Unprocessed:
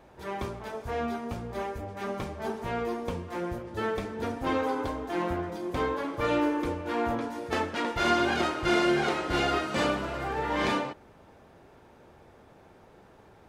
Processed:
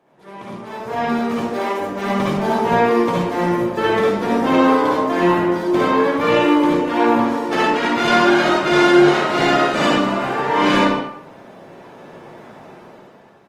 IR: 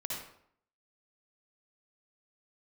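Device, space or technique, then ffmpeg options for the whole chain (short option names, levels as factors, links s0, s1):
far-field microphone of a smart speaker: -filter_complex "[0:a]asplit=3[s0][s1][s2];[s0]afade=t=out:st=1.32:d=0.02[s3];[s1]highpass=f=260:w=0.5412,highpass=f=260:w=1.3066,afade=t=in:st=1.32:d=0.02,afade=t=out:st=1.79:d=0.02[s4];[s2]afade=t=in:st=1.79:d=0.02[s5];[s3][s4][s5]amix=inputs=3:normalize=0,equalizer=f=11000:w=0.67:g=-3.5,aecho=1:1:16|65:0.168|0.299[s6];[1:a]atrim=start_sample=2205[s7];[s6][s7]afir=irnorm=-1:irlink=0,highpass=f=140:w=0.5412,highpass=f=140:w=1.3066,dynaudnorm=f=280:g=7:m=5.96,volume=0.891" -ar 48000 -c:a libopus -b:a 24k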